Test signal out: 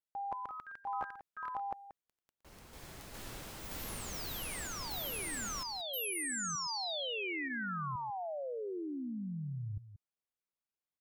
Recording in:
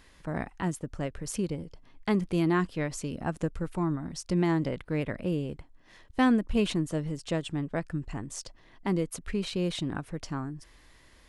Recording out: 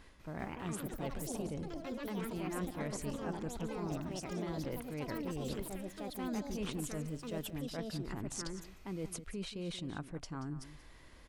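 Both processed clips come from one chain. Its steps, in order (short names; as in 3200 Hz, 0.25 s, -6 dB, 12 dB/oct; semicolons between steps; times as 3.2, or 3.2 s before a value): notch 1800 Hz, Q 25; reverse; compressor 6:1, threshold -40 dBFS; reverse; echo 0.182 s -13.5 dB; echoes that change speed 0.197 s, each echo +4 st, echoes 3; mismatched tape noise reduction decoder only; gain +1 dB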